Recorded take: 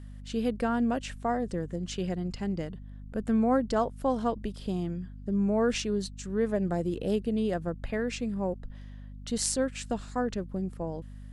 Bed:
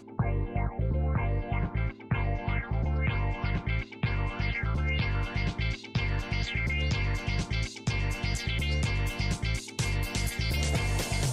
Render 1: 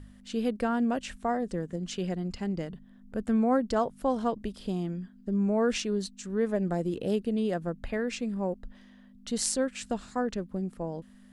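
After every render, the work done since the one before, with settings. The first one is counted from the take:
hum removal 50 Hz, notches 3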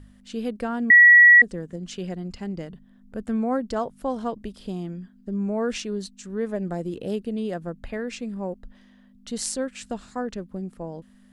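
0:00.90–0:01.42: beep over 1,930 Hz −8 dBFS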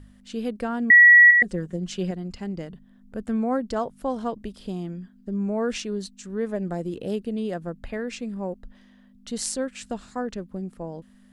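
0:01.30–0:02.11: comb filter 5.5 ms, depth 78%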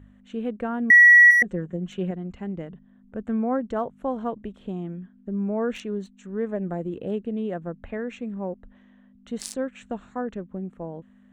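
adaptive Wiener filter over 9 samples
high-pass filter 51 Hz 6 dB per octave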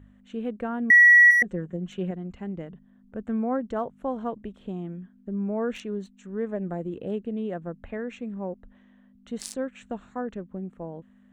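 level −2 dB

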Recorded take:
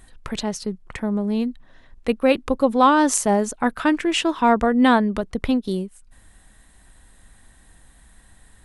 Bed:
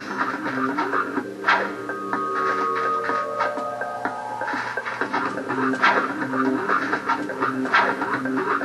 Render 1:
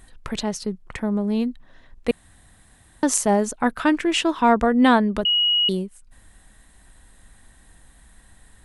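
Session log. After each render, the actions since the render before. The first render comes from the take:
0:02.11–0:03.03: fill with room tone
0:05.25–0:05.69: beep over 2,900 Hz −16 dBFS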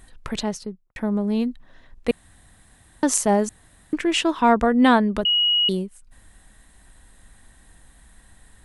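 0:00.43–0:00.96: fade out and dull
0:03.49–0:03.93: fill with room tone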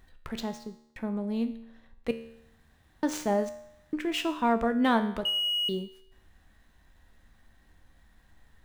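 running median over 5 samples
tuned comb filter 76 Hz, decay 0.76 s, harmonics all, mix 70%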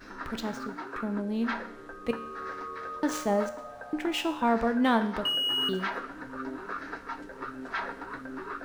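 mix in bed −15.5 dB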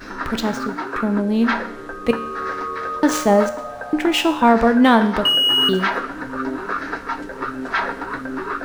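level +12 dB
brickwall limiter −3 dBFS, peak gain reduction 2 dB

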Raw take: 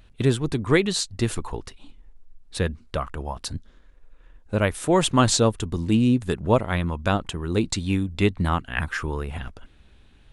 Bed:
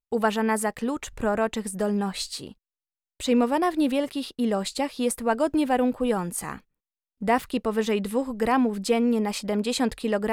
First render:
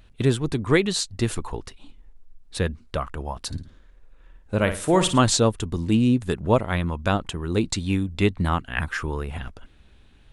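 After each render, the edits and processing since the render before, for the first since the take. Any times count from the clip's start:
0:03.47–0:05.19: flutter between parallel walls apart 9.4 metres, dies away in 0.36 s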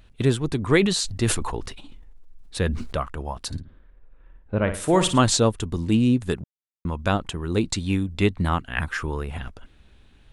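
0:00.57–0:03.02: level that may fall only so fast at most 49 dB per second
0:03.60–0:04.74: high-frequency loss of the air 410 metres
0:06.44–0:06.85: silence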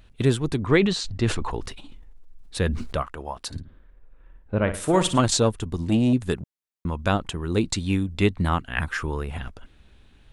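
0:00.56–0:01.51: high-frequency loss of the air 96 metres
0:03.02–0:03.56: bass and treble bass −8 dB, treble −2 dB
0:04.67–0:06.13: saturating transformer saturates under 370 Hz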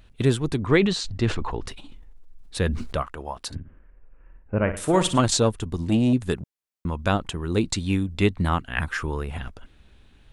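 0:01.26–0:01.67: high-frequency loss of the air 89 metres
0:03.55–0:04.77: Butterworth low-pass 2,900 Hz 72 dB per octave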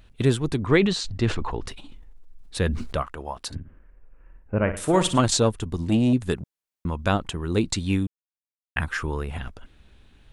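0:08.07–0:08.76: silence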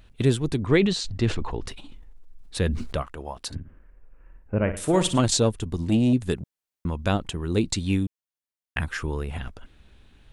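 dynamic equaliser 1,200 Hz, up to −5 dB, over −40 dBFS, Q 1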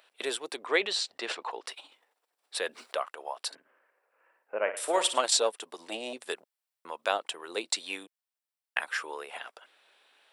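high-pass filter 530 Hz 24 dB per octave
notch filter 6,500 Hz, Q 8.2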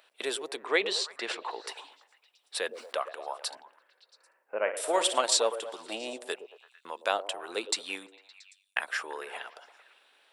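echo through a band-pass that steps 113 ms, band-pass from 430 Hz, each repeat 0.7 octaves, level −9 dB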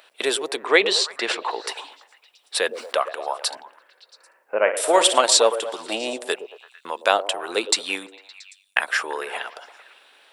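level +10 dB
brickwall limiter −1 dBFS, peak gain reduction 2.5 dB

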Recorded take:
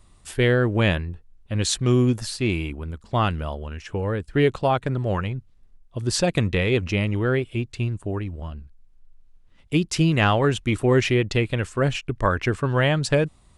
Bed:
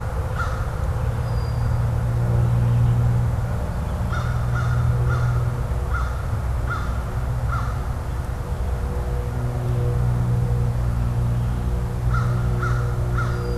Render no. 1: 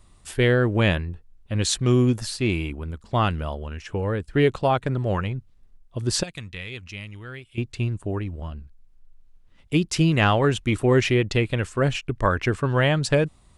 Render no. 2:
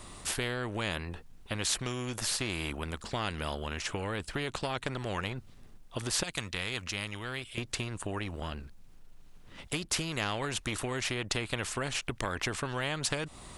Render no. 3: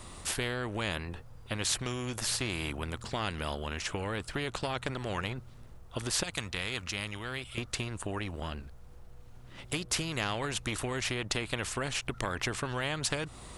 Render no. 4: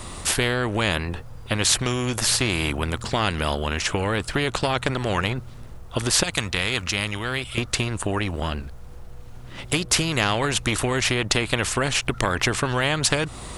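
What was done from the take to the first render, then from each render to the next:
0:06.23–0:07.58: guitar amp tone stack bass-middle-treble 5-5-5
downward compressor, threshold −26 dBFS, peak gain reduction 12 dB; every bin compressed towards the loudest bin 2 to 1
mix in bed −31 dB
level +11 dB

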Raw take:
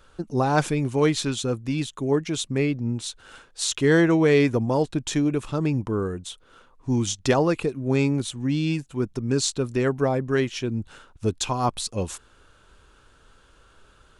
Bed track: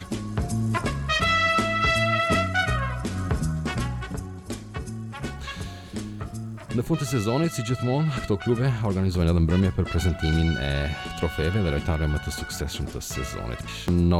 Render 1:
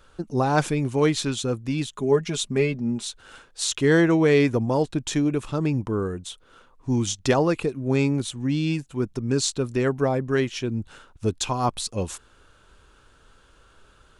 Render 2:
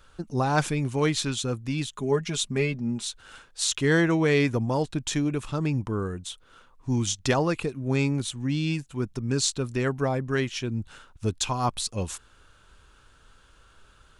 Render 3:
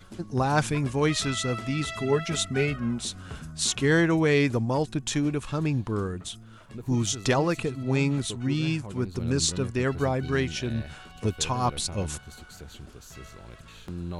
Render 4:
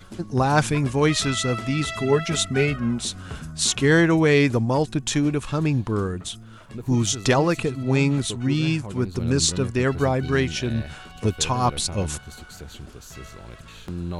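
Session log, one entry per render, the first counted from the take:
0:01.95–0:03.05: comb filter 4.9 ms
parametric band 410 Hz −5 dB 2 octaves
mix in bed track −14.5 dB
level +4.5 dB

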